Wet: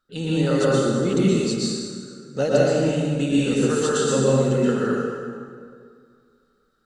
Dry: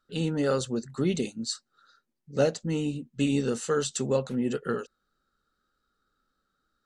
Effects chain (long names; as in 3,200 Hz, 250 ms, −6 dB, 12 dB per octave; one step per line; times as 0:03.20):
dense smooth reverb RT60 2.1 s, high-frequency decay 0.65×, pre-delay 105 ms, DRR −7.5 dB